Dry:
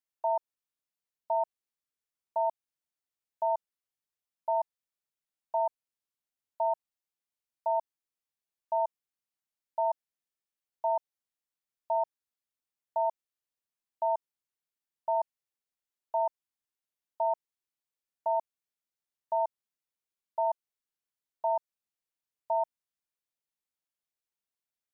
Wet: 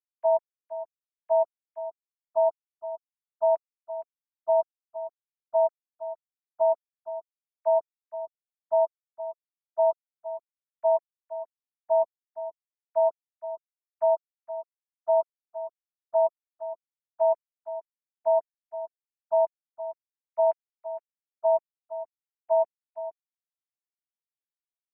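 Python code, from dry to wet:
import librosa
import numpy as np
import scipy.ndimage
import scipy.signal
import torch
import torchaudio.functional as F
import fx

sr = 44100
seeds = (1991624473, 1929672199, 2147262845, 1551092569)

y = fx.sine_speech(x, sr)
y = scipy.signal.sosfilt(scipy.signal.butter(2, 1000.0, 'lowpass', fs=sr, output='sos'), y)
y = fx.low_shelf_res(y, sr, hz=550.0, db=13.0, q=1.5)
y = y + 10.0 ** (-8.5 / 20.0) * np.pad(y, (int(466 * sr / 1000.0), 0))[:len(y)]
y = fx.upward_expand(y, sr, threshold_db=-41.0, expansion=1.5)
y = F.gain(torch.from_numpy(y), 6.5).numpy()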